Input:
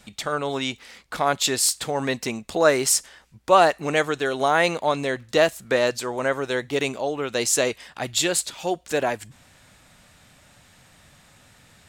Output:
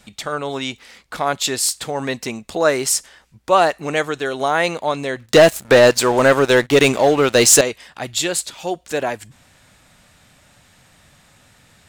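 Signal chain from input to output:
0:05.26–0:07.61: leveller curve on the samples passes 3
level +1.5 dB

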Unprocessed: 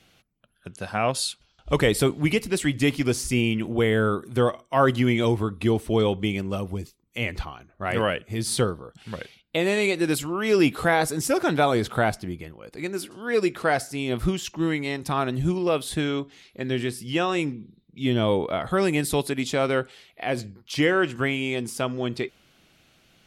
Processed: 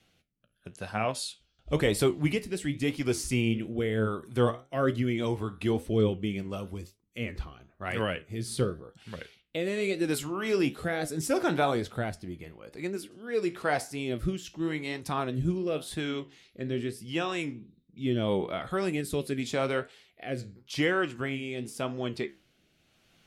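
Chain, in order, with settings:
flanger 1 Hz, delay 8.8 ms, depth 9 ms, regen +70%
rotating-speaker cabinet horn 0.85 Hz

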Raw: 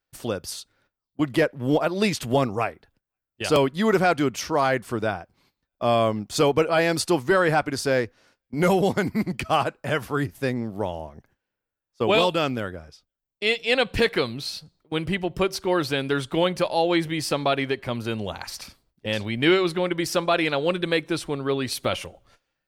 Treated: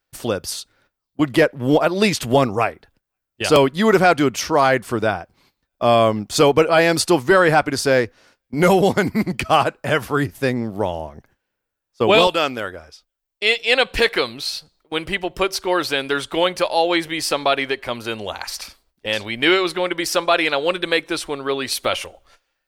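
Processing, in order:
parametric band 140 Hz −2.5 dB 2.1 octaves, from 0:12.27 −14 dB
level +6.5 dB

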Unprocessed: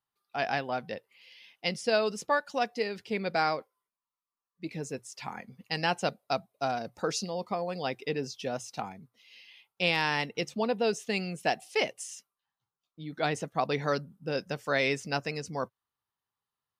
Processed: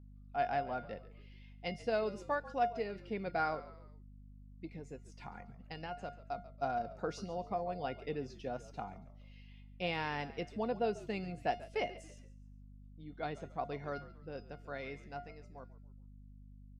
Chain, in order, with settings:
fade-out on the ending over 5.21 s
low-pass filter 1,300 Hz 6 dB per octave
0:04.65–0:06.38: downward compressor 3 to 1, threshold −38 dBFS, peak gain reduction 10 dB
tuned comb filter 710 Hz, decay 0.3 s, mix 80%
mains hum 50 Hz, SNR 14 dB
on a send: echo with shifted repeats 140 ms, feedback 41%, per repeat −59 Hz, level −17 dB
on the sum: level +7 dB

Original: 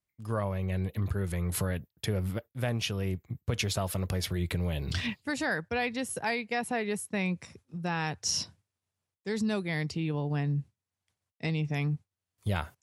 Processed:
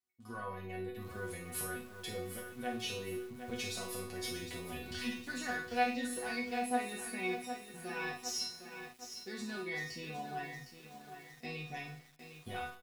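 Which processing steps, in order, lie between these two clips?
one-sided soft clipper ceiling −26.5 dBFS
high-pass filter 67 Hz 12 dB per octave
mains-hum notches 60/120 Hz
in parallel at +2.5 dB: brickwall limiter −26 dBFS, peak gain reduction 10.5 dB
on the sum: resonators tuned to a chord B3 fifth, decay 0.43 s
ambience of single reflections 38 ms −12 dB, 52 ms −8 dB
on a send at −16 dB: convolution reverb RT60 0.85 s, pre-delay 40 ms
on the sum: feedback echo at a low word length 759 ms, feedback 55%, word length 10 bits, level −8.5 dB
level +7 dB

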